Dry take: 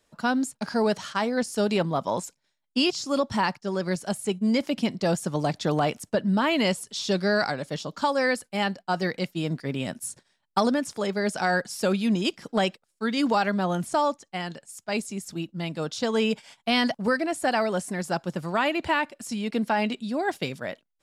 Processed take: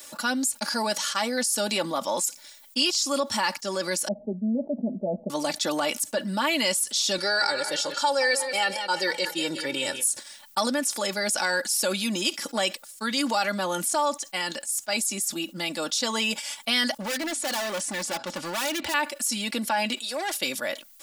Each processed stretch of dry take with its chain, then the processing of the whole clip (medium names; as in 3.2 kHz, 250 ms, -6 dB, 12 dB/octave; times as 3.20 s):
4.08–5.30 s: rippled Chebyshev low-pass 750 Hz, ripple 3 dB + comb 4.7 ms, depth 93%
7.18–10.04 s: low-pass 9.9 kHz + comb 2.2 ms, depth 75% + modulated delay 180 ms, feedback 41%, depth 67 cents, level -14.5 dB
17.01–18.94 s: low-pass 5.1 kHz + overload inside the chain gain 29.5 dB + de-hum 125.1 Hz, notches 2
19.98–20.41 s: high-pass 380 Hz 24 dB/octave + valve stage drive 26 dB, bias 0.35
whole clip: RIAA curve recording; comb 3.5 ms, depth 66%; level flattener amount 50%; trim -7 dB